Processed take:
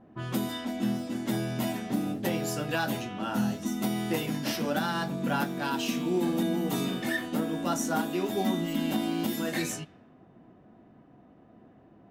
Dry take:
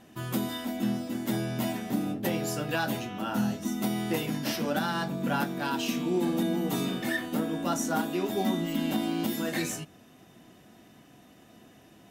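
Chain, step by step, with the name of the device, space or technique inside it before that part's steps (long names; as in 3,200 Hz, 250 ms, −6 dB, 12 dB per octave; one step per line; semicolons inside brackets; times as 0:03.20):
cassette deck with a dynamic noise filter (white noise bed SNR 32 dB; low-pass that shuts in the quiet parts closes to 870 Hz, open at −27.5 dBFS)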